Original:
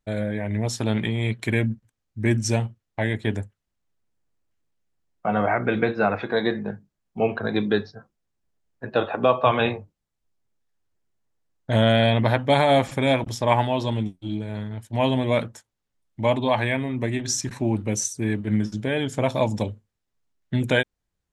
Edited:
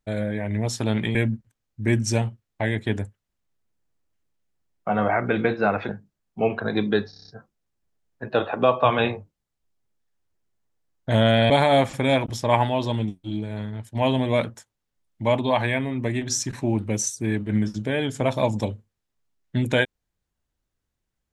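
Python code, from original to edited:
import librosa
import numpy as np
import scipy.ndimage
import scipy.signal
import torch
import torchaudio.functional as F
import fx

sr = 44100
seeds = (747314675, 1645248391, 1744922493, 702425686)

y = fx.edit(x, sr, fx.cut(start_s=1.15, length_s=0.38),
    fx.cut(start_s=6.27, length_s=0.41),
    fx.stutter(start_s=7.89, slice_s=0.03, count=7),
    fx.cut(start_s=12.11, length_s=0.37), tone=tone)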